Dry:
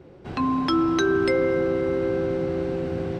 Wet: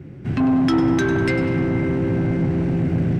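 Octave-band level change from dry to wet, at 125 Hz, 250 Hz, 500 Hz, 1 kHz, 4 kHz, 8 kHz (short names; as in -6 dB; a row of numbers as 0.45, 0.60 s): +12.5 dB, +6.0 dB, -2.0 dB, -1.5 dB, -1.5 dB, n/a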